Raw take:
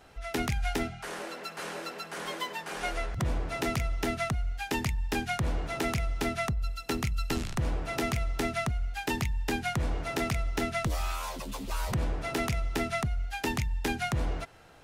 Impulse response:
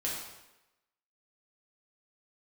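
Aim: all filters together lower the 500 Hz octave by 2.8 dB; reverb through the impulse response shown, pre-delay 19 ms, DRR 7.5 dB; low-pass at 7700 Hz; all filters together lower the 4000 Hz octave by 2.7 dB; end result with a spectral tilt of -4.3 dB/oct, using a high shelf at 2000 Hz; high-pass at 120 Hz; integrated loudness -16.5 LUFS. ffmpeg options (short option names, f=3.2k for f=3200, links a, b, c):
-filter_complex "[0:a]highpass=120,lowpass=7.7k,equalizer=f=500:t=o:g=-4.5,highshelf=f=2k:g=5,equalizer=f=4k:t=o:g=-8.5,asplit=2[a][b];[1:a]atrim=start_sample=2205,adelay=19[c];[b][c]afir=irnorm=-1:irlink=0,volume=-12dB[d];[a][d]amix=inputs=2:normalize=0,volume=17.5dB"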